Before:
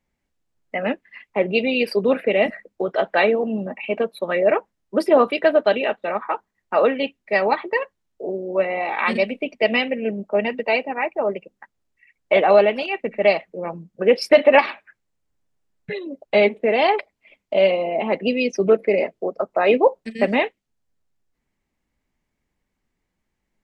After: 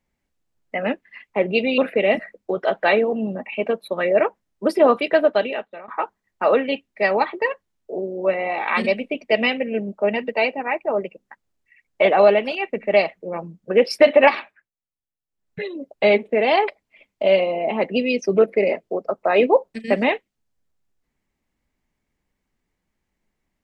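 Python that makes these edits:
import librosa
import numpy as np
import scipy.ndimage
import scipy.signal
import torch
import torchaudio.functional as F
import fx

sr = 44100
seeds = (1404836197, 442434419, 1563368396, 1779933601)

y = fx.edit(x, sr, fx.cut(start_s=1.78, length_s=0.31),
    fx.fade_out_to(start_s=5.56, length_s=0.63, floor_db=-20.5),
    fx.fade_down_up(start_s=14.67, length_s=1.25, db=-20.0, fade_s=0.34), tone=tone)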